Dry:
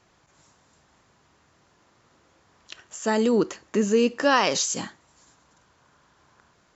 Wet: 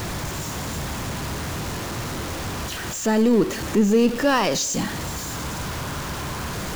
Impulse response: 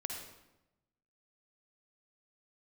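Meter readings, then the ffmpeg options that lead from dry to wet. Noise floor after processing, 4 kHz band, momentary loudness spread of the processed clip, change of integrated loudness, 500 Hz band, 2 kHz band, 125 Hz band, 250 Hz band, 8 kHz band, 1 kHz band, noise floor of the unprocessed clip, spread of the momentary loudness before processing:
-31 dBFS, +3.5 dB, 11 LU, -1.0 dB, +2.0 dB, +2.5 dB, +13.5 dB, +6.0 dB, n/a, +2.0 dB, -63 dBFS, 11 LU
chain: -filter_complex "[0:a]aeval=exprs='val(0)+0.5*0.0668*sgn(val(0))':c=same,lowshelf=f=250:g=11,asplit=2[a][b];[1:a]atrim=start_sample=2205[c];[b][c]afir=irnorm=-1:irlink=0,volume=-15.5dB[d];[a][d]amix=inputs=2:normalize=0,volume=-4dB"

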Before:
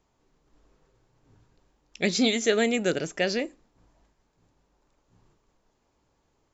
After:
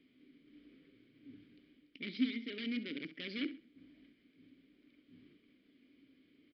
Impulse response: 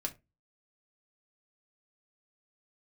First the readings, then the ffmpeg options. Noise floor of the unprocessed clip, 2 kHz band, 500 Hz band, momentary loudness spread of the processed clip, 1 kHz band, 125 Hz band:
-72 dBFS, -15.0 dB, -24.5 dB, 22 LU, under -25 dB, -17.5 dB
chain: -filter_complex "[0:a]lowshelf=f=120:g=-3,areverse,acompressor=threshold=-33dB:ratio=8,areverse,alimiter=level_in=11.5dB:limit=-24dB:level=0:latency=1:release=457,volume=-11.5dB,acrusher=bits=6:mode=log:mix=0:aa=0.000001,aeval=exprs='(mod(66.8*val(0)+1,2)-1)/66.8':c=same,asplit=3[a][b][c];[a]bandpass=f=270:t=q:w=8,volume=0dB[d];[b]bandpass=f=2.29k:t=q:w=8,volume=-6dB[e];[c]bandpass=f=3.01k:t=q:w=8,volume=-9dB[f];[d][e][f]amix=inputs=3:normalize=0,aecho=1:1:66|132|198:0.188|0.0546|0.0158,aresample=11025,aresample=44100,volume=17.5dB"

